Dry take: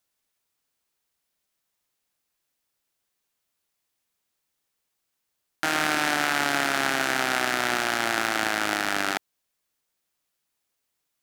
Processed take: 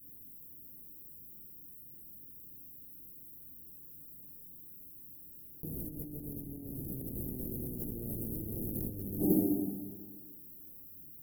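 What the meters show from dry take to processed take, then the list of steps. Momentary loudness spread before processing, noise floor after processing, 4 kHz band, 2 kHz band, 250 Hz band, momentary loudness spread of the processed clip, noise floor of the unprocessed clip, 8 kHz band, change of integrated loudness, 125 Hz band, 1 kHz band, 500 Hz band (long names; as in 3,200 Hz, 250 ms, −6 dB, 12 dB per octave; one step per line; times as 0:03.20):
4 LU, −52 dBFS, below −40 dB, below −40 dB, −1.0 dB, 14 LU, −79 dBFS, −17.5 dB, −15.5 dB, +4.0 dB, −34.0 dB, −10.0 dB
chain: coupled-rooms reverb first 0.42 s, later 1.7 s, DRR −5.5 dB
harmonic generator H 7 −10 dB, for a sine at −5 dBFS
inverse Chebyshev band-stop filter 1,400–4,400 Hz, stop band 80 dB
compressor whose output falls as the input rises −48 dBFS, ratio −1
level +10 dB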